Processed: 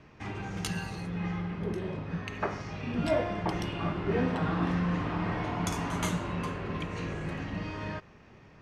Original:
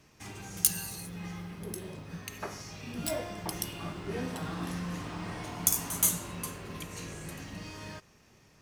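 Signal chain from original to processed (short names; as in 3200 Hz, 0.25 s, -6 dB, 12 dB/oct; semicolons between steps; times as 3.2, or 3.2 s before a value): LPF 2400 Hz 12 dB/oct; gain +7.5 dB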